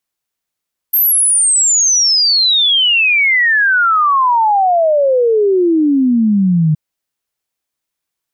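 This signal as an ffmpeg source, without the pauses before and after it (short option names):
-f lavfi -i "aevalsrc='0.376*clip(min(t,5.82-t)/0.01,0,1)*sin(2*PI*13000*5.82/log(150/13000)*(exp(log(150/13000)*t/5.82)-1))':d=5.82:s=44100"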